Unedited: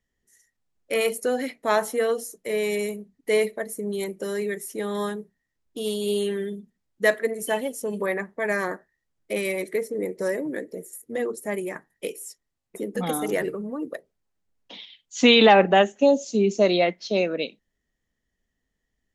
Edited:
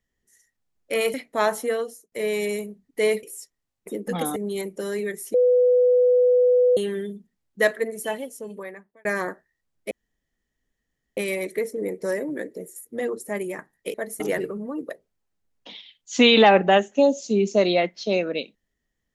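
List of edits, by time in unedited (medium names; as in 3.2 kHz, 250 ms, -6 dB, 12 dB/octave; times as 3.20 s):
1.14–1.44 s: delete
1.95–2.42 s: fade out
3.53–3.79 s: swap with 12.11–13.24 s
4.77–6.20 s: bleep 496 Hz -14 dBFS
7.13–8.48 s: fade out
9.34 s: insert room tone 1.26 s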